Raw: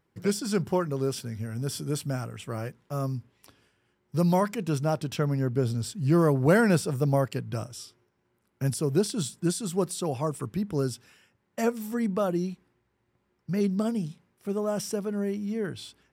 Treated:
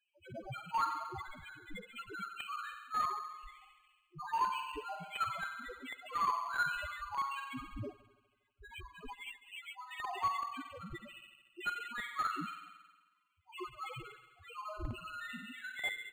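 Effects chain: HPF 980 Hz 24 dB/oct; band shelf 5200 Hz +13 dB 2.3 oct; reverse; compressor 20:1, threshold -35 dBFS, peak gain reduction 18.5 dB; reverse; loudest bins only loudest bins 1; in parallel at -7.5 dB: bit-crush 8-bit; on the sum: outdoor echo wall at 42 m, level -27 dB; reverb RT60 1.3 s, pre-delay 44 ms, DRR 2.5 dB; decimation joined by straight lines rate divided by 8×; gain +14 dB

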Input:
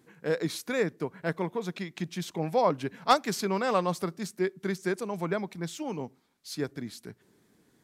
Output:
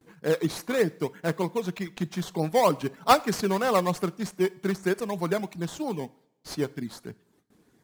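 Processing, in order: gate with hold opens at -55 dBFS; reverb removal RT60 0.62 s; in parallel at -4 dB: decimation with a swept rate 13×, swing 60% 3.2 Hz; on the sum: two-slope reverb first 0.58 s, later 1.6 s, from -18 dB, DRR 17.5 dB

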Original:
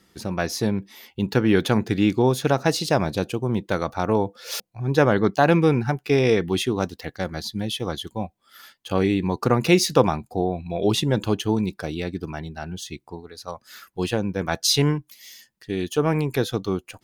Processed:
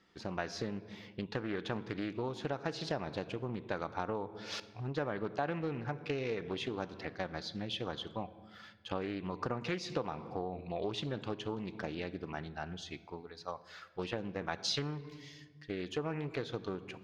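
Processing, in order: air absorption 160 m; shoebox room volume 1200 m³, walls mixed, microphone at 0.34 m; compressor 6:1, threshold -25 dBFS, peak gain reduction 13.5 dB; low shelf 360 Hz -8 dB; Doppler distortion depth 0.32 ms; gain -4.5 dB

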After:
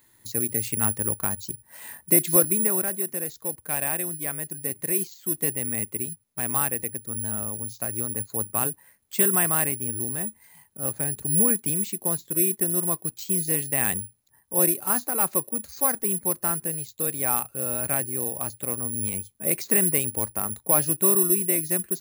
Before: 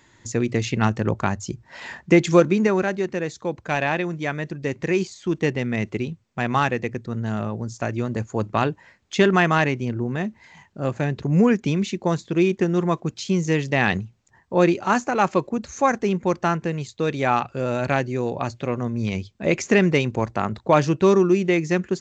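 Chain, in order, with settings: careless resampling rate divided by 4×, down none, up zero stuff; gain -10 dB

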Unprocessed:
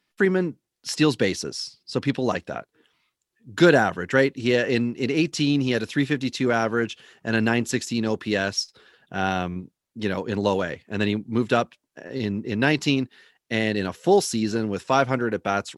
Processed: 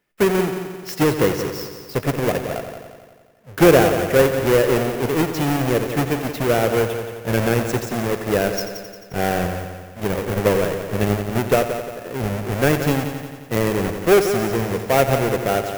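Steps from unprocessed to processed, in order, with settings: half-waves squared off; graphic EQ 250/500/1000/4000/8000 Hz -7/+5/-5/-8/-5 dB; multi-head echo 88 ms, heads first and second, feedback 56%, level -11.5 dB

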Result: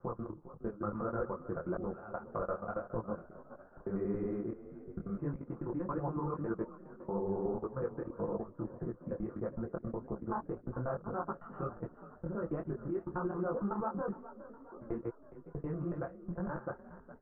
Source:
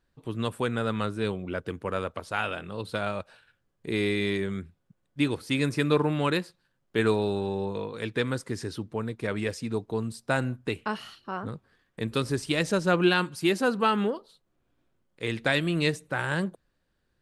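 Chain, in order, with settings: slices in reverse order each 92 ms, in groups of 7; in parallel at -1 dB: limiter -21 dBFS, peak gain reduction 12 dB; on the sum: low shelf 78 Hz +11 dB; compressor 12:1, threshold -27 dBFS, peak gain reduction 13 dB; elliptic low-pass 1300 Hz, stop band 70 dB; comb 5.8 ms, depth 66%; level quantiser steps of 16 dB; dynamic EQ 140 Hz, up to -5 dB, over -49 dBFS, Q 0.89; on a send: frequency-shifting echo 0.413 s, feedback 52%, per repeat +30 Hz, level -15.5 dB; on the sum: detuned doubles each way 58 cents; gain +2.5 dB

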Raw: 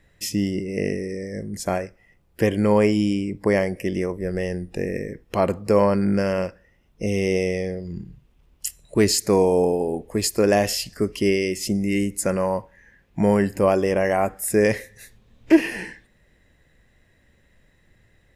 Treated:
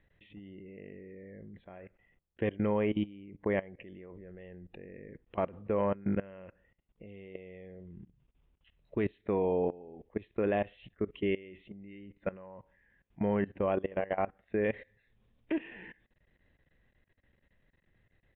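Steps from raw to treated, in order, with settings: level quantiser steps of 20 dB; downsampling 8000 Hz; gain -8.5 dB

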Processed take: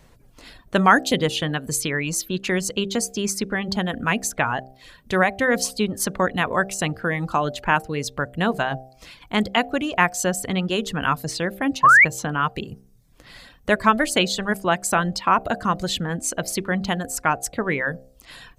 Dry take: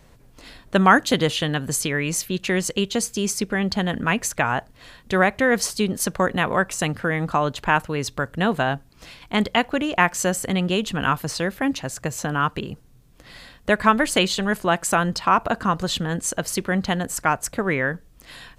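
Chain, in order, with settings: reverb removal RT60 0.61 s; de-hum 65.18 Hz, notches 12; painted sound rise, 11.83–12.05, 1000–2400 Hz -11 dBFS

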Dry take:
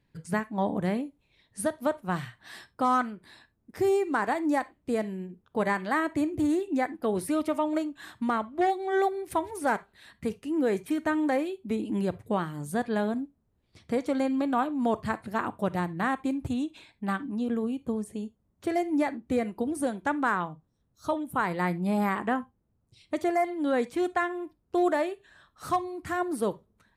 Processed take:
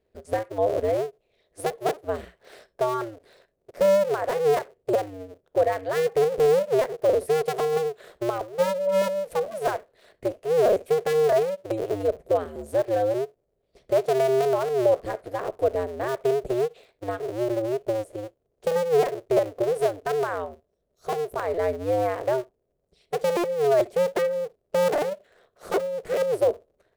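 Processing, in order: cycle switcher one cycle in 2, inverted; band shelf 510 Hz +15 dB 1.1 oct; gain -6 dB

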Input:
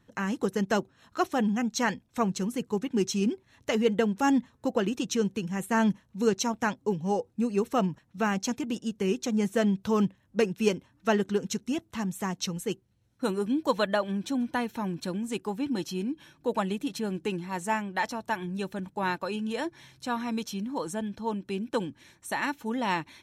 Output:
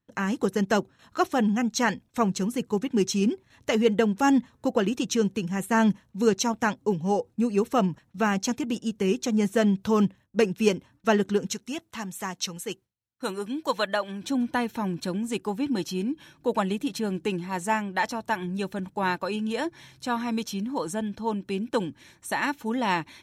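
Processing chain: 11.53–14.22 low shelf 470 Hz -10 dB; gate with hold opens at -53 dBFS; gain +3 dB

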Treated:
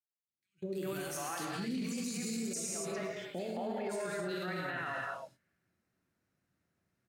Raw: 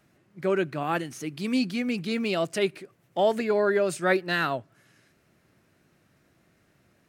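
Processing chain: opening faded in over 2.28 s; 0.75–1.17 RIAA curve recording; compressor 3:1, threshold -38 dBFS, peak gain reduction 15 dB; 1.84–2.67 resonant high shelf 4600 Hz +14 dB, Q 3; three bands offset in time highs, lows, mids 0.18/0.4 s, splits 520/2900 Hz; gate -54 dBFS, range -23 dB; non-linear reverb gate 0.31 s flat, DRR -1 dB; limiter -33 dBFS, peak gain reduction 20 dB; gain +3.5 dB

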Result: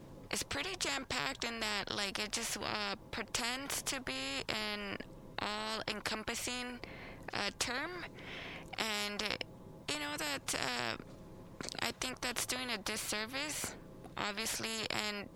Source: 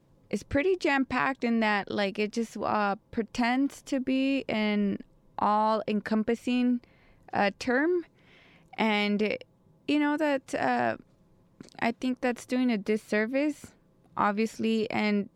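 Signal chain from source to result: spectral compressor 4:1; gain -3 dB

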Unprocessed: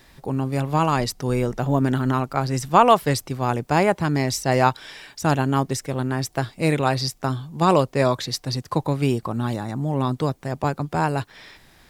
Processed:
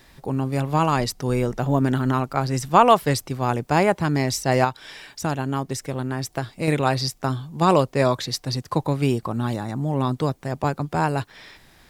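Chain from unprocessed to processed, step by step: 4.64–6.68 compressor 2:1, threshold -24 dBFS, peak gain reduction 7 dB

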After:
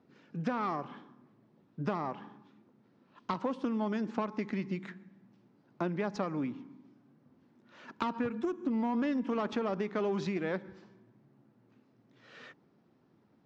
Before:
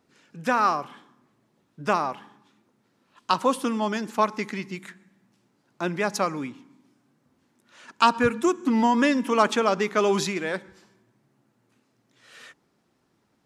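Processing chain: tube stage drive 17 dB, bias 0.5; LPF 5800 Hz 24 dB/oct; tilt -3 dB/oct; compressor 6:1, threshold -29 dBFS, peak gain reduction 14 dB; HPF 140 Hz 12 dB/oct

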